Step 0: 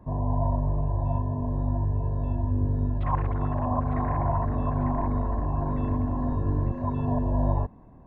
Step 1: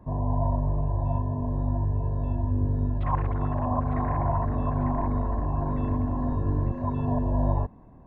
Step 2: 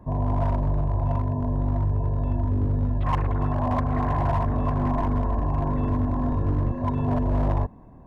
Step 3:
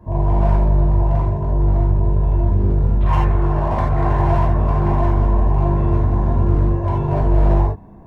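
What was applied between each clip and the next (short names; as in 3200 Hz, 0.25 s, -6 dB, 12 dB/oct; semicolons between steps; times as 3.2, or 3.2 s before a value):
nothing audible
hard clip -20.5 dBFS, distortion -17 dB; gain +3 dB
non-linear reverb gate 0.11 s flat, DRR -5 dB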